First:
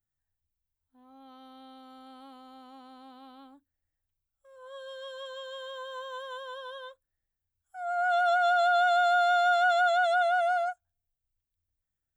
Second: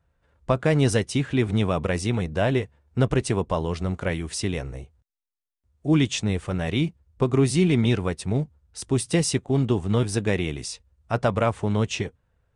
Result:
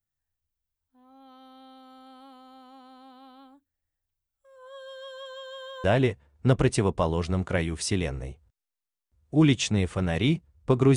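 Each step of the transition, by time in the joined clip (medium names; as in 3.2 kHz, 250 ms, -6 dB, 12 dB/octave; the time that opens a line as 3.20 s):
first
5.84 s: go over to second from 2.36 s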